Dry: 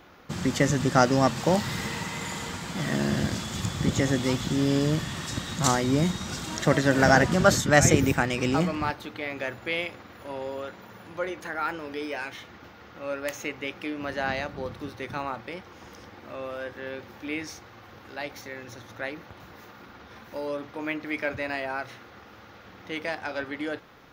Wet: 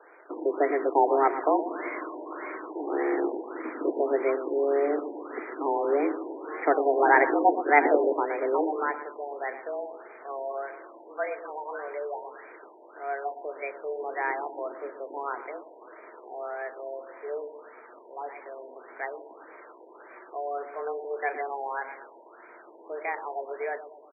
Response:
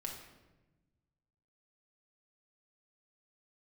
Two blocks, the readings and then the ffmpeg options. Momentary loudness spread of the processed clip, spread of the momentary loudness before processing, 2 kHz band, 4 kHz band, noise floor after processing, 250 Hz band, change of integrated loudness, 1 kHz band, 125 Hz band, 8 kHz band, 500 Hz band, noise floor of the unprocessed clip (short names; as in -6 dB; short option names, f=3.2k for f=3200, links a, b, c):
20 LU, 20 LU, -3.0 dB, under -40 dB, -51 dBFS, -6.0 dB, -1.5 dB, +3.0 dB, under -40 dB, under -40 dB, +1.5 dB, -49 dBFS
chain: -filter_complex "[0:a]asplit=2[a][b];[b]adelay=118,lowpass=f=2k:p=1,volume=-11dB,asplit=2[c][d];[d]adelay=118,lowpass=f=2k:p=1,volume=0.48,asplit=2[e][f];[f]adelay=118,lowpass=f=2k:p=1,volume=0.48,asplit=2[g][h];[h]adelay=118,lowpass=f=2k:p=1,volume=0.48,asplit=2[i][j];[j]adelay=118,lowpass=f=2k:p=1,volume=0.48[k];[a][c][e][g][i][k]amix=inputs=6:normalize=0,highpass=f=180:t=q:w=0.5412,highpass=f=180:t=q:w=1.307,lowpass=f=3.5k:t=q:w=0.5176,lowpass=f=3.5k:t=q:w=0.7071,lowpass=f=3.5k:t=q:w=1.932,afreqshift=140,afftfilt=real='re*lt(b*sr/1024,970*pow(2500/970,0.5+0.5*sin(2*PI*1.7*pts/sr)))':imag='im*lt(b*sr/1024,970*pow(2500/970,0.5+0.5*sin(2*PI*1.7*pts/sr)))':win_size=1024:overlap=0.75"